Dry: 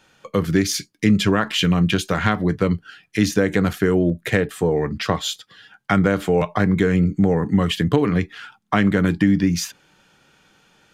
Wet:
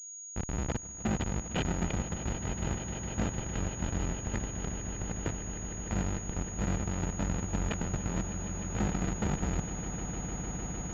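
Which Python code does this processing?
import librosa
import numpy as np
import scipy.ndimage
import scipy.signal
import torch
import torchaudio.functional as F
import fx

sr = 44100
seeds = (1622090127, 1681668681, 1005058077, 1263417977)

p1 = fx.octave_divider(x, sr, octaves=2, level_db=-5.0)
p2 = scipy.signal.sosfilt(scipy.signal.cheby1(5, 1.0, [240.0, 1800.0], 'bandstop', fs=sr, output='sos'), p1)
p3 = fx.schmitt(p2, sr, flips_db=-16.5)
p4 = fx.notch_comb(p3, sr, f0_hz=1100.0)
p5 = 10.0 ** (-24.5 / 20.0) * np.tanh(p4 / 10.0 ** (-24.5 / 20.0))
p6 = p5 + fx.echo_swell(p5, sr, ms=152, loudest=8, wet_db=-14, dry=0)
y = fx.pwm(p6, sr, carrier_hz=6700.0)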